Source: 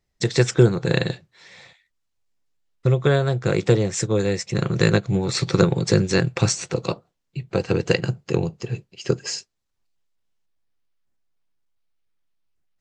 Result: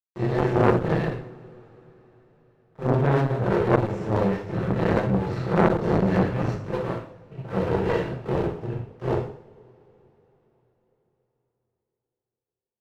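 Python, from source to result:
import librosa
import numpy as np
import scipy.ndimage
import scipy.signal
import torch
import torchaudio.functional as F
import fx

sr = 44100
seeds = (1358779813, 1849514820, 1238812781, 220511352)

y = fx.phase_scramble(x, sr, seeds[0], window_ms=200)
y = scipy.signal.sosfilt(scipy.signal.butter(2, 1200.0, 'lowpass', fs=sr, output='sos'), y)
y = np.sign(y) * np.maximum(np.abs(y) - 10.0 ** (-31.5 / 20.0), 0.0)
y = fx.hum_notches(y, sr, base_hz=50, count=3)
y = fx.cheby_harmonics(y, sr, harmonics=(4,), levels_db=(-11,), full_scale_db=-5.0)
y = fx.rev_double_slope(y, sr, seeds[1], early_s=0.51, late_s=4.4, knee_db=-28, drr_db=0.5)
y = fx.transformer_sat(y, sr, knee_hz=890.0)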